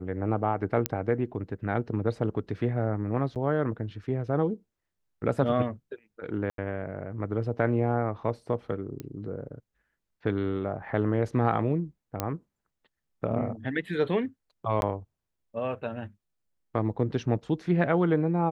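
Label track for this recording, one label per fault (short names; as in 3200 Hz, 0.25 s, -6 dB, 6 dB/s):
0.860000	0.860000	pop -8 dBFS
3.350000	3.360000	gap 8.1 ms
6.500000	6.580000	gap 82 ms
9.000000	9.000000	pop -23 dBFS
12.200000	12.200000	pop -12 dBFS
14.810000	14.820000	gap 11 ms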